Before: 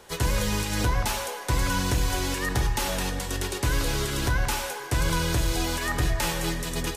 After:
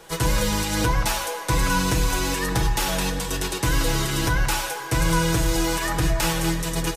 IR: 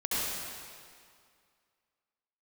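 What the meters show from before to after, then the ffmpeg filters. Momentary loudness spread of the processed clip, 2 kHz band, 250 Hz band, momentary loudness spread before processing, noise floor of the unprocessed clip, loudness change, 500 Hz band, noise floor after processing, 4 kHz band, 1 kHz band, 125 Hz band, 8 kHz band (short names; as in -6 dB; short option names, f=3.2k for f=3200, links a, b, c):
4 LU, +3.5 dB, +5.0 dB, 4 LU, -37 dBFS, +3.5 dB, +4.0 dB, -33 dBFS, +3.5 dB, +4.5 dB, +3.0 dB, +4.5 dB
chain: -af "aecho=1:1:6.2:0.68,volume=2.5dB"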